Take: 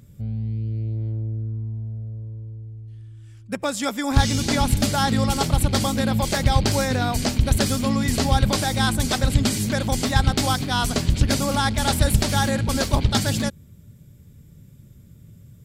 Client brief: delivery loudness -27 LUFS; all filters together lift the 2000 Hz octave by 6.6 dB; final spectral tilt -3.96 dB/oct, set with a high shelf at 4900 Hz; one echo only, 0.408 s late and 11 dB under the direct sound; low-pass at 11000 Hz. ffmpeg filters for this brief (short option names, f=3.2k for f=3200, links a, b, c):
-af "lowpass=11k,equalizer=f=2k:t=o:g=8,highshelf=f=4.9k:g=3.5,aecho=1:1:408:0.282,volume=-7dB"